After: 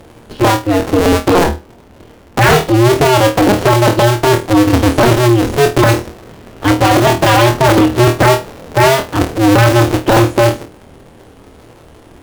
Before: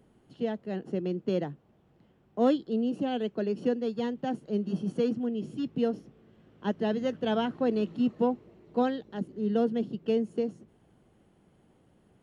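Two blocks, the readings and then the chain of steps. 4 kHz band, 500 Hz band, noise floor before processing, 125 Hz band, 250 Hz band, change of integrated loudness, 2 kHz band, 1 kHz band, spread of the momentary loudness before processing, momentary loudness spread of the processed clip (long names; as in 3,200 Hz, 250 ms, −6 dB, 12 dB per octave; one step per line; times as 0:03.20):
+25.5 dB, +18.0 dB, −64 dBFS, +28.0 dB, +16.0 dB, +19.5 dB, +29.5 dB, +25.0 dB, 8 LU, 6 LU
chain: sub-harmonics by changed cycles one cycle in 2, inverted
flutter between parallel walls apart 4.4 metres, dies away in 0.24 s
sine wavefolder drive 11 dB, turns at −11.5 dBFS
level +7 dB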